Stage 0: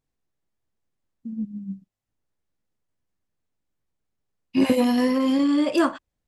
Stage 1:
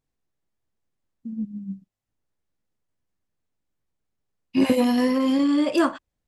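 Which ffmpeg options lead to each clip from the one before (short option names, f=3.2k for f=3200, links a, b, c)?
-af anull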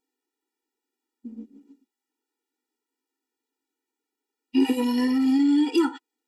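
-af "acompressor=threshold=-26dB:ratio=2,afftfilt=real='re*eq(mod(floor(b*sr/1024/250),2),1)':imag='im*eq(mod(floor(b*sr/1024/250),2),1)':win_size=1024:overlap=0.75,volume=5.5dB"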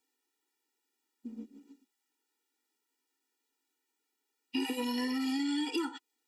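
-filter_complex "[0:a]acrossover=split=240|870|2000|5700[a][b][c][d][e];[a]acompressor=threshold=-40dB:ratio=4[f];[b]acompressor=threshold=-32dB:ratio=4[g];[c]acompressor=threshold=-49dB:ratio=4[h];[d]acompressor=threshold=-48dB:ratio=4[i];[e]acompressor=threshold=-56dB:ratio=4[j];[f][g][h][i][j]amix=inputs=5:normalize=0,tiltshelf=f=820:g=-5"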